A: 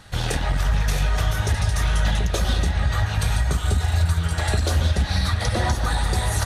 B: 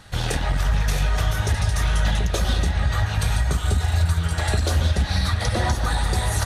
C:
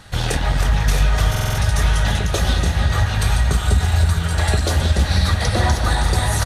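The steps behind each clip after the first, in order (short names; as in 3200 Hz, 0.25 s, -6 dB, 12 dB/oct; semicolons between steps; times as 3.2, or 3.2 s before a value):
nothing audible
on a send: feedback echo 0.318 s, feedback 59%, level -9 dB; on the sum: stuck buffer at 1.3, samples 2048, times 5; gain +3.5 dB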